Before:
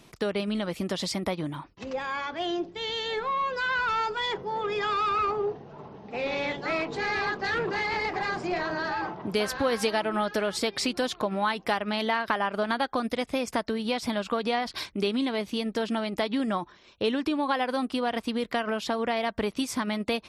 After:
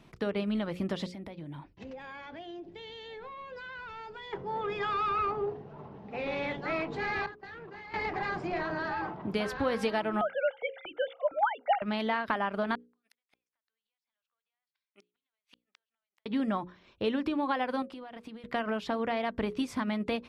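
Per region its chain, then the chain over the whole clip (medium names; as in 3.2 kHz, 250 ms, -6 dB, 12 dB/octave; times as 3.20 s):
1.06–4.33 s: peaking EQ 1.2 kHz -9 dB 0.47 oct + compression, threshold -37 dBFS
7.26–7.94 s: gate -31 dBFS, range -22 dB + compression 8:1, threshold -39 dBFS
10.21–11.82 s: formants replaced by sine waves + comb 1.4 ms, depth 74% + upward expansion, over -30 dBFS
12.75–16.26 s: high-pass 1.4 kHz + compression 8:1, threshold -41 dBFS + inverted gate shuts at -35 dBFS, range -41 dB
17.82–18.44 s: high-pass 120 Hz 6 dB/octave + compression 12:1, threshold -37 dBFS
whole clip: tone controls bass +4 dB, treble -11 dB; hum notches 60/120/180/240/300/360/420/480/540 Hz; trim -3.5 dB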